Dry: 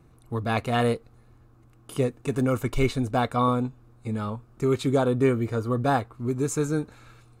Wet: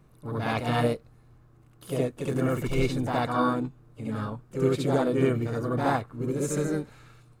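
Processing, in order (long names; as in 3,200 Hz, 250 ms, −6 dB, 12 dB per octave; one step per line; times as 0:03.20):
backwards echo 68 ms −3.5 dB
pitch-shifted copies added +4 semitones −9 dB, +5 semitones −16 dB
level −4 dB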